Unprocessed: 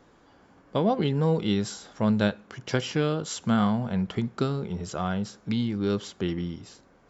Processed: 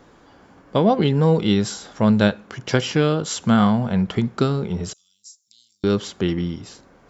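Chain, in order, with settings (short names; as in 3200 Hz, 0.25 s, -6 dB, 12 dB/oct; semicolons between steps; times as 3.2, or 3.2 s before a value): 4.93–5.84 inverse Chebyshev high-pass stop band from 1900 Hz, stop band 60 dB; gain +7 dB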